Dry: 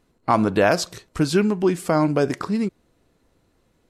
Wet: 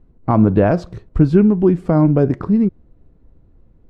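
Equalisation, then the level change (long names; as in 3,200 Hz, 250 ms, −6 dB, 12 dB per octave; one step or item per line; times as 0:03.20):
spectral tilt −4.5 dB per octave
high-shelf EQ 4,600 Hz −10 dB
−1.5 dB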